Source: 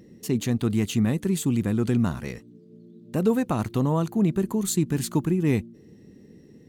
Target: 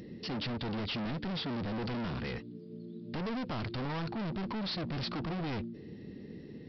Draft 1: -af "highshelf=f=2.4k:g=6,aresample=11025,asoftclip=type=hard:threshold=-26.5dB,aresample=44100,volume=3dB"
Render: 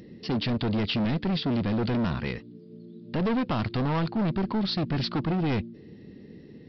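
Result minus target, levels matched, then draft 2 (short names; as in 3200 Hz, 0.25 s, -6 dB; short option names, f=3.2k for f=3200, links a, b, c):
hard clip: distortion -4 dB
-af "highshelf=f=2.4k:g=6,aresample=11025,asoftclip=type=hard:threshold=-37.5dB,aresample=44100,volume=3dB"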